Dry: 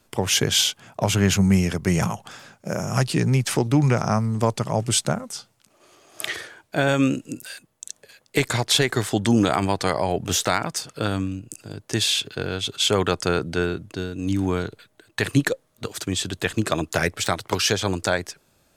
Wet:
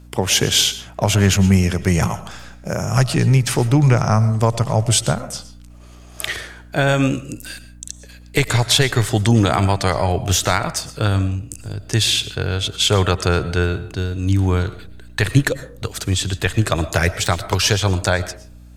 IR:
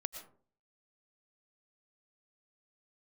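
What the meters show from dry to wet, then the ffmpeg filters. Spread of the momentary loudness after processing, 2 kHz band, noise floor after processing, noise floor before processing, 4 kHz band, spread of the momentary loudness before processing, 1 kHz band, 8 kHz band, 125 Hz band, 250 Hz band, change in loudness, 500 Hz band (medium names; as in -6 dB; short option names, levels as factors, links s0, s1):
15 LU, +4.0 dB, -41 dBFS, -64 dBFS, +4.0 dB, 15 LU, +4.0 dB, +4.0 dB, +8.0 dB, +2.0 dB, +4.5 dB, +3.0 dB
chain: -filter_complex "[0:a]asubboost=boost=5:cutoff=96,aeval=exprs='val(0)+0.00562*(sin(2*PI*60*n/s)+sin(2*PI*2*60*n/s)/2+sin(2*PI*3*60*n/s)/3+sin(2*PI*4*60*n/s)/4+sin(2*PI*5*60*n/s)/5)':c=same,asplit=2[s0][s1];[1:a]atrim=start_sample=2205[s2];[s1][s2]afir=irnorm=-1:irlink=0,volume=0.944[s3];[s0][s3]amix=inputs=2:normalize=0,volume=0.891"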